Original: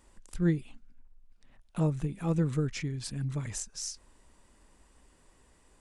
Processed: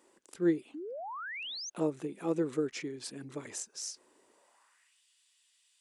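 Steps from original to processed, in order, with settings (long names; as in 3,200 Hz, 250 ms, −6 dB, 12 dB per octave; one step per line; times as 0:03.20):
high-pass filter sweep 360 Hz → 3,300 Hz, 0:04.29–0:05.00
sound drawn into the spectrogram rise, 0:00.74–0:01.70, 280–6,600 Hz −38 dBFS
level −2.5 dB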